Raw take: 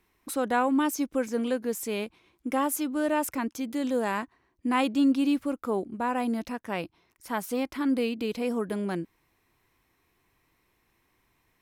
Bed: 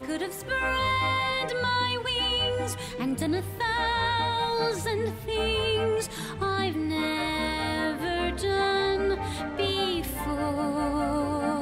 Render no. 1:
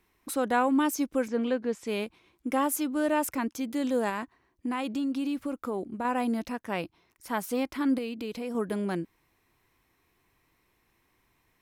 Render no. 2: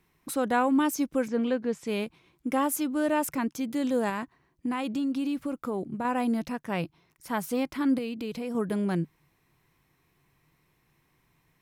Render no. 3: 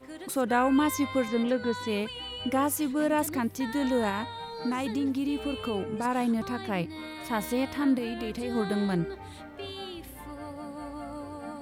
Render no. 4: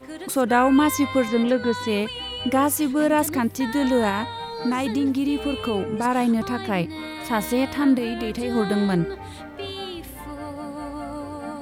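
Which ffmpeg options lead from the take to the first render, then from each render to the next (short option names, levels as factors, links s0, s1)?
-filter_complex "[0:a]asplit=3[s0][s1][s2];[s0]afade=t=out:st=1.27:d=0.02[s3];[s1]lowpass=4100,afade=t=in:st=1.27:d=0.02,afade=t=out:st=1.86:d=0.02[s4];[s2]afade=t=in:st=1.86:d=0.02[s5];[s3][s4][s5]amix=inputs=3:normalize=0,asettb=1/sr,asplit=3[s6][s7][s8];[s6]atrim=end=4.094[s9];[s7]atrim=start=4.09:end=6.05,asetpts=PTS-STARTPTS,afade=t=in:d=0.004:c=qsin,afade=t=out:st=1.956:d=0.004:c=qsin,acompressor=threshold=0.0447:ratio=6:attack=3.2:release=140:knee=1:detection=peak[s10];[s8]atrim=start=6.046[s11];[s9][s10]acrossfade=d=0.004:c1=hsin:c2=qsin[s12];[s12][s11]acrossfade=d=0.004:c1=qsin:c2=hsin,asettb=1/sr,asplit=3[s13][s14][s15];[s13]atrim=end=7.984[s16];[s14]atrim=start=7.98:end=8.55,asetpts=PTS-STARTPTS,afade=t=in:d=0.004:c=qsin,afade=t=out:st=0.566:d=0.004:c=qsin,acompressor=threshold=0.0178:ratio=2:attack=3.2:release=140:knee=1:detection=peak[s17];[s15]atrim=start=8.546[s18];[s16][s17]acrossfade=d=0.004:c1=hsin:c2=qsin[s19];[s19][s18]acrossfade=d=0.004:c1=qsin:c2=hsin"
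-af "equalizer=f=150:w=3.1:g=13.5"
-filter_complex "[1:a]volume=0.251[s0];[0:a][s0]amix=inputs=2:normalize=0"
-af "volume=2.11"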